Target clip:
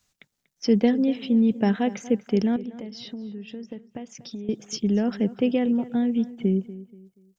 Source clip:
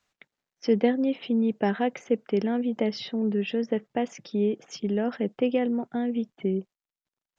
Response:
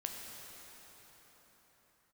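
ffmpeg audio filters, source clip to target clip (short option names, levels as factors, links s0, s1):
-filter_complex "[0:a]bass=f=250:g=11,treble=f=4000:g=13,asettb=1/sr,asplit=3[s0][s1][s2];[s0]atrim=end=2.564[s3];[s1]atrim=start=2.56:end=4.49,asetpts=PTS-STARTPTS,afade=t=in:d=0.004:c=qsin,afade=t=out:st=1.926:d=0.004:c=qsin,acompressor=threshold=0.0251:ratio=10[s4];[s2]atrim=start=4.486[s5];[s3][s4]acrossfade=d=0.004:c1=hsin:c2=qsin[s6];[s6][s5]acrossfade=d=0.004:c1=qsin:c2=hsin,asplit=2[s7][s8];[s8]adelay=240,lowpass=f=3200:p=1,volume=0.15,asplit=2[s9][s10];[s10]adelay=240,lowpass=f=3200:p=1,volume=0.34,asplit=2[s11][s12];[s12]adelay=240,lowpass=f=3200:p=1,volume=0.34[s13];[s7][s9][s11][s13]amix=inputs=4:normalize=0,volume=0.841"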